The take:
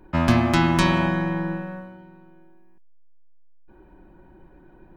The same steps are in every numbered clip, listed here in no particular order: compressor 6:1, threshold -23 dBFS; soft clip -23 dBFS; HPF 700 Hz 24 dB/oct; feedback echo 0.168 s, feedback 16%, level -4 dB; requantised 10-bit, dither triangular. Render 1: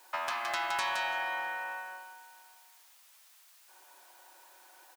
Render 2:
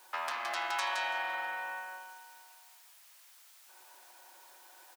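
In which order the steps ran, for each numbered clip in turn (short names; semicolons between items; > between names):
compressor > feedback echo > requantised > HPF > soft clip; requantised > compressor > feedback echo > soft clip > HPF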